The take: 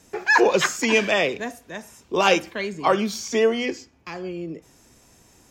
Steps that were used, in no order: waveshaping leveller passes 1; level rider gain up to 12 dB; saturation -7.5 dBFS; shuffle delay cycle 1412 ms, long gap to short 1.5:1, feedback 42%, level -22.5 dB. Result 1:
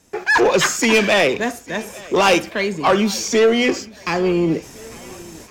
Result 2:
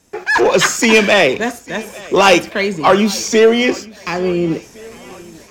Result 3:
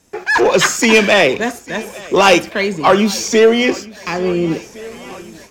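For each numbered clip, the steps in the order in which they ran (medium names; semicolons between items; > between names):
level rider > saturation > waveshaping leveller > shuffle delay; saturation > waveshaping leveller > level rider > shuffle delay; saturation > waveshaping leveller > shuffle delay > level rider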